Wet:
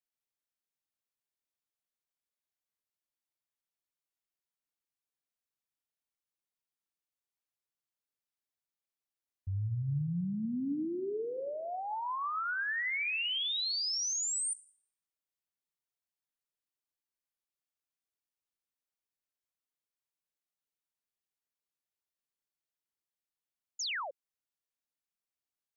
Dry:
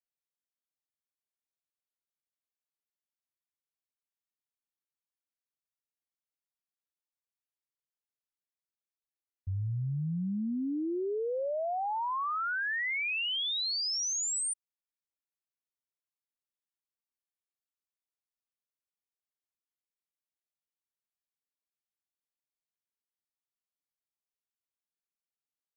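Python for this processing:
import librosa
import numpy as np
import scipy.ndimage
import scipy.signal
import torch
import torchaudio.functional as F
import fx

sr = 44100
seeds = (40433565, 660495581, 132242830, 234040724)

y = fx.room_shoebox(x, sr, seeds[0], volume_m3=690.0, walls='mixed', distance_m=0.32)
y = fx.spec_paint(y, sr, seeds[1], shape='fall', start_s=23.79, length_s=0.32, low_hz=500.0, high_hz=7300.0, level_db=-34.0)
y = fx.dynamic_eq(y, sr, hz=640.0, q=1.3, threshold_db=-44.0, ratio=4.0, max_db=-5)
y = y * 10.0 ** (-1.5 / 20.0)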